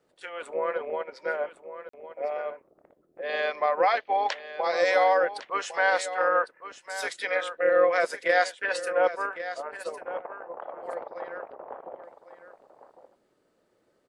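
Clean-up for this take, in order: interpolate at 1.89, 44 ms; inverse comb 1.105 s -12.5 dB

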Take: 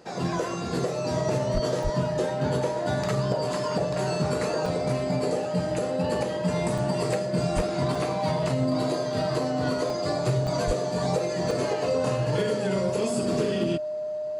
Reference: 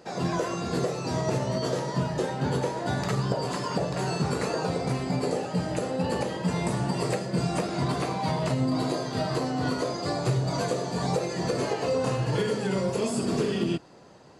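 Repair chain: clip repair -16 dBFS; notch 610 Hz, Q 30; de-plosive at 1.53/1.83/7.55/10.66; interpolate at 1.83/4.66/6.78/7.95/9.9/10.47/11.51, 2.5 ms

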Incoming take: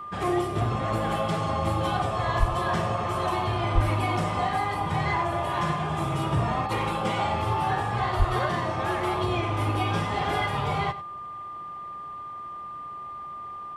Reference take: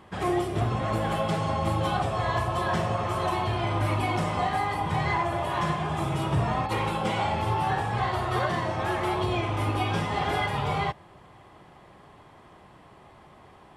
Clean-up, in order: notch 1200 Hz, Q 30; 2.39–2.51 HPF 140 Hz 24 dB/oct; 3.74–3.86 HPF 140 Hz 24 dB/oct; 8.18–8.3 HPF 140 Hz 24 dB/oct; inverse comb 96 ms -15 dB

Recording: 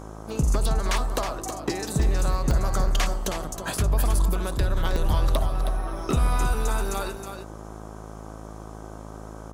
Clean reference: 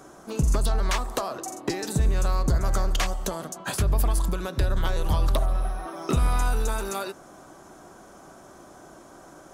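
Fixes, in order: de-hum 53.6 Hz, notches 24; interpolate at 1.49/2.03/2.51/3.77/4.96, 1.6 ms; inverse comb 0.318 s -8 dB

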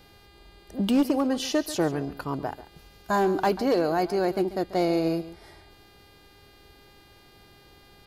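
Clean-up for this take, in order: clip repair -16 dBFS; de-hum 403.8 Hz, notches 12; inverse comb 0.139 s -15.5 dB

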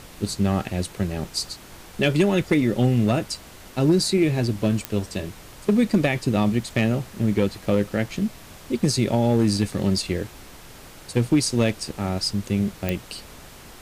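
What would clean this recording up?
clip repair -11 dBFS; de-click; noise print and reduce 24 dB

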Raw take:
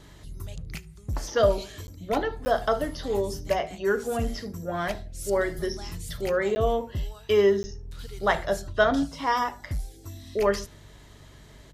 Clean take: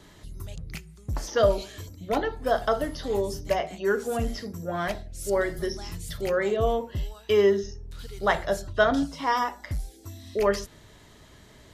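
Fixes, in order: de-hum 48 Hz, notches 3; interpolate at 1.87/2.45/6.55/7.63, 10 ms; inverse comb 73 ms -24 dB

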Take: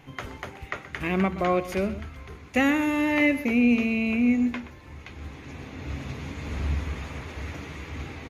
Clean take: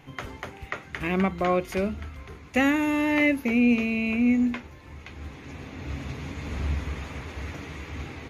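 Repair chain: inverse comb 0.125 s -14.5 dB

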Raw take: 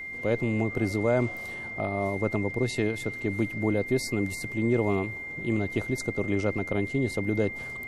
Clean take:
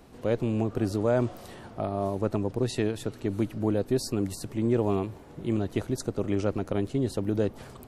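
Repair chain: notch 2100 Hz, Q 30

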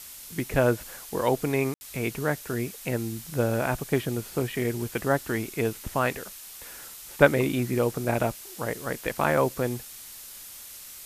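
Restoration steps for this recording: room tone fill 1.74–1.81; noise print and reduce 29 dB

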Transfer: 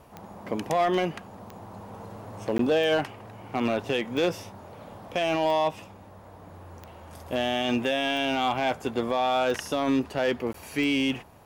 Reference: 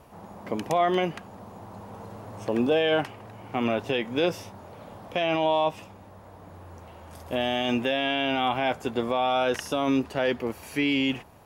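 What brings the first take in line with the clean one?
clip repair -17.5 dBFS; de-click; interpolate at 2.58/10.53, 13 ms

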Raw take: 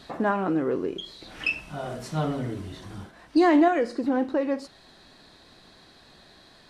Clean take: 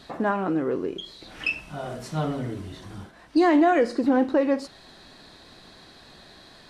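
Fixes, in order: gain 0 dB, from 3.68 s +4 dB

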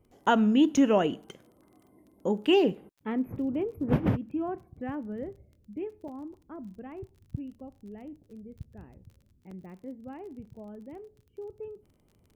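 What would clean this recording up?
de-click; interpolate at 0.77/6.08/9.51/10.45, 4.1 ms

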